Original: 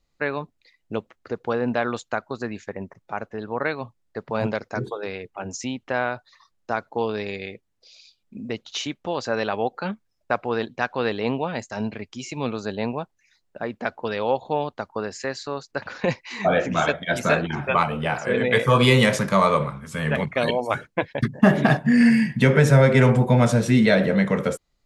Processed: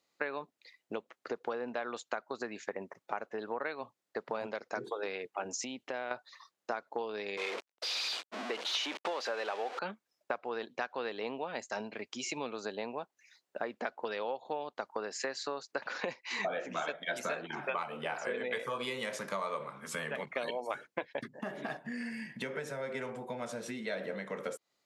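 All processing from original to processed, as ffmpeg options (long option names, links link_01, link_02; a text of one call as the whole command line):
ffmpeg -i in.wav -filter_complex "[0:a]asettb=1/sr,asplit=3[link_01][link_02][link_03];[link_01]atrim=end=5.544[link_04];[link_02]atrim=start=5.54:end=6.11,asetpts=PTS-STARTPTS,afade=type=in:duration=0.004:curve=qsin,afade=type=out:start_time=0.566:duration=0.004:curve=qsin,equalizer=frequency=1200:width_type=o:width=1.2:gain=-6.5,acompressor=threshold=-32dB:ratio=4:attack=3.2:release=140:knee=1:detection=peak[link_05];[link_03]atrim=start=6.106[link_06];[link_04][link_05]acrossfade=duration=0.004:curve1=hsin:curve2=qsin[link_07];[link_07][link_06]acrossfade=duration=0.004:curve1=qsin:curve2=hsin,asettb=1/sr,asplit=3[link_08][link_09][link_10];[link_08]atrim=end=7.374[link_11];[link_09]atrim=start=7.37:end=9.79,asetpts=PTS-STARTPTS,afade=type=in:duration=0.004:curve=qsin,afade=type=out:start_time=2.416:duration=0.004:curve=qsin,aeval=exprs='val(0)+0.5*0.0501*sgn(val(0))':channel_layout=same,highpass=390,lowpass=4600,agate=range=-33dB:threshold=-37dB:ratio=3:release=100:detection=peak[link_12];[link_10]atrim=start=9.786[link_13];[link_11][link_12]acrossfade=duration=0.004:curve1=hsin:curve2=qsin[link_14];[link_14][link_13]acrossfade=duration=0.004:curve1=qsin:curve2=hsin,acompressor=threshold=-31dB:ratio=16,highpass=340" out.wav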